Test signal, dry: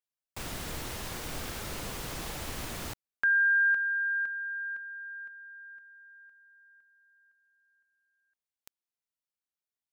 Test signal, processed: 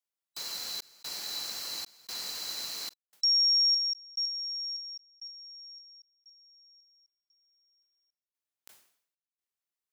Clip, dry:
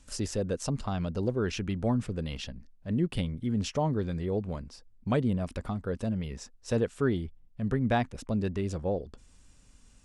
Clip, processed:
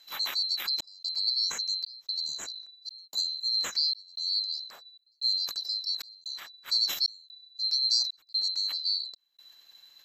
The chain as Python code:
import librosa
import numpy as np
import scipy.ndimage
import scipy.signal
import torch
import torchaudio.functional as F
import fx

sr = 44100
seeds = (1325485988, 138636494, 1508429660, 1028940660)

y = fx.band_swap(x, sr, width_hz=4000)
y = fx.low_shelf(y, sr, hz=150.0, db=-11.5)
y = fx.step_gate(y, sr, bpm=187, pattern='xxxxxxxxxx...', floor_db=-60.0, edge_ms=4.5)
y = fx.sustainer(y, sr, db_per_s=93.0)